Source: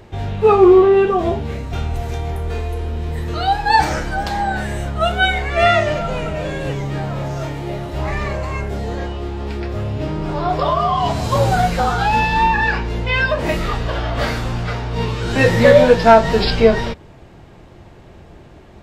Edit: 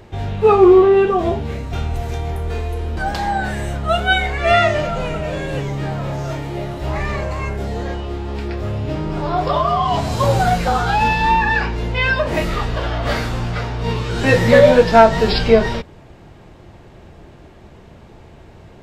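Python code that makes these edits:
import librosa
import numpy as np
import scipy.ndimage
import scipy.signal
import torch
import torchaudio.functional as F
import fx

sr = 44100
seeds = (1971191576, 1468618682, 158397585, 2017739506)

y = fx.edit(x, sr, fx.cut(start_s=2.97, length_s=1.12), tone=tone)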